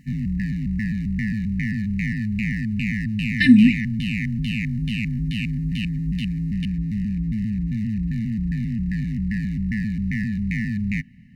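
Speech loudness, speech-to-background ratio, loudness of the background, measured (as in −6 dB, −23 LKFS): −15.0 LKFS, 10.0 dB, −25.0 LKFS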